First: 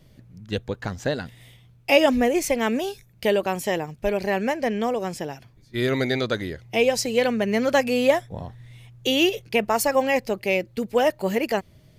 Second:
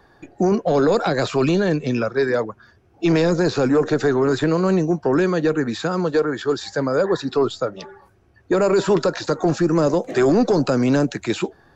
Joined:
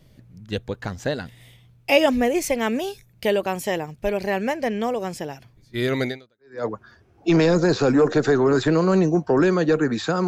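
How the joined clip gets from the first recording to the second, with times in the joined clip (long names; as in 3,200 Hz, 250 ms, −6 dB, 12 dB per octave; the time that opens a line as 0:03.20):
first
0:06.37: continue with second from 0:02.13, crossfade 0.58 s exponential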